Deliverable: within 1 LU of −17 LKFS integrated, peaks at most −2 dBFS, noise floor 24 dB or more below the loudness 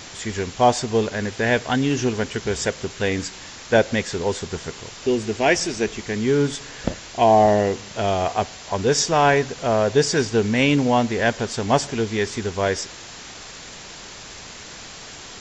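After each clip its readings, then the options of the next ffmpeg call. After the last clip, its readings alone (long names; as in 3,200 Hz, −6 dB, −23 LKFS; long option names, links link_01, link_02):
background noise floor −39 dBFS; target noise floor −46 dBFS; integrated loudness −21.5 LKFS; sample peak −2.0 dBFS; target loudness −17.0 LKFS
→ -af "afftdn=noise_reduction=7:noise_floor=-39"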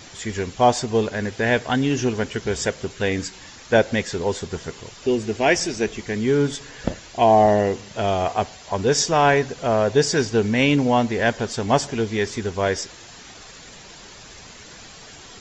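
background noise floor −43 dBFS; target noise floor −46 dBFS
→ -af "afftdn=noise_reduction=6:noise_floor=-43"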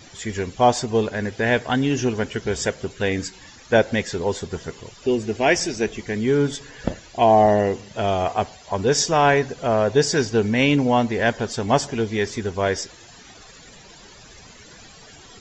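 background noise floor −46 dBFS; integrated loudness −21.5 LKFS; sample peak −2.0 dBFS; target loudness −17.0 LKFS
→ -af "volume=4.5dB,alimiter=limit=-2dB:level=0:latency=1"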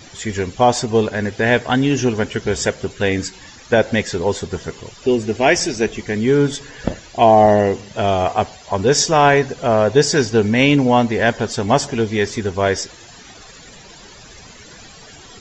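integrated loudness −17.0 LKFS; sample peak −2.0 dBFS; background noise floor −41 dBFS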